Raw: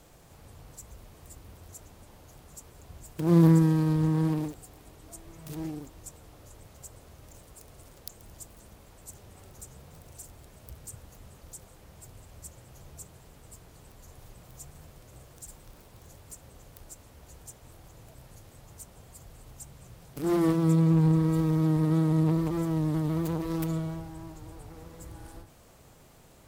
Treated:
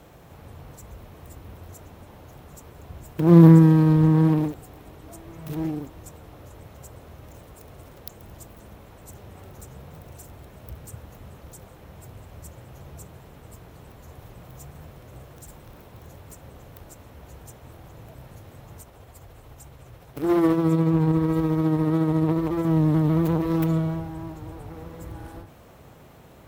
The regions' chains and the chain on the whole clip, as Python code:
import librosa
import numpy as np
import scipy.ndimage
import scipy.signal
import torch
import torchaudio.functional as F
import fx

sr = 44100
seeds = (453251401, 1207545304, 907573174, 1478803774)

y = fx.chain(x, sr, fx.peak_eq(hz=180.0, db=-8.0, octaves=0.74),
    fx.tremolo(hz=14.0, depth=0.34), at=(18.81, 22.65))
y = scipy.signal.sosfilt(scipy.signal.butter(2, 51.0, 'highpass', fs=sr, output='sos'), y)
y = fx.peak_eq(y, sr, hz=8100.0, db=-11.5, octaves=1.8)
y = fx.notch(y, sr, hz=4700.0, q=17.0)
y = y * 10.0 ** (8.0 / 20.0)